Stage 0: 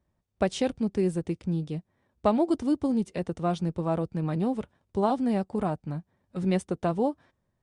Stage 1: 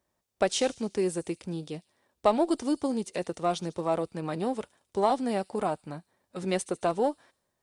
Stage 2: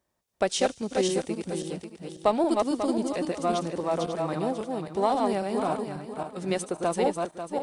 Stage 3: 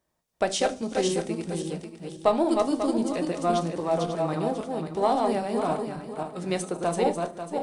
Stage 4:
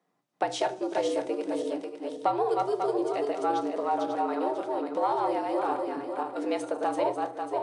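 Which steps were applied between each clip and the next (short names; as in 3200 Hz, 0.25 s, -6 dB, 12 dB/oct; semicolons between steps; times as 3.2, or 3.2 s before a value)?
tone controls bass -14 dB, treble +6 dB; in parallel at -9 dB: one-sided clip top -25 dBFS; on the sum: thin delay 73 ms, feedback 55%, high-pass 5200 Hz, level -13 dB
regenerating reverse delay 0.271 s, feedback 49%, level -3 dB
reverb RT60 0.35 s, pre-delay 6 ms, DRR 8.5 dB
LPF 2400 Hz 6 dB/oct; compressor 2:1, threshold -31 dBFS, peak gain reduction 8.5 dB; frequency shift +120 Hz; gain +3 dB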